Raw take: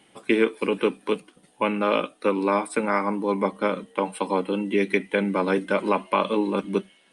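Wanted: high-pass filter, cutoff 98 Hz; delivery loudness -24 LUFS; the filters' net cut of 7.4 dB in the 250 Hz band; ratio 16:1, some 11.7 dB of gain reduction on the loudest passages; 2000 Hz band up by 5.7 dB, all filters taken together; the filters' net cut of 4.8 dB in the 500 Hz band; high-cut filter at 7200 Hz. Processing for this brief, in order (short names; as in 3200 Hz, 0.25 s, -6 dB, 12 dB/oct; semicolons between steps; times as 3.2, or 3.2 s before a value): HPF 98 Hz; LPF 7200 Hz; bell 250 Hz -9 dB; bell 500 Hz -3.5 dB; bell 2000 Hz +7.5 dB; compressor 16:1, threshold -28 dBFS; gain +10 dB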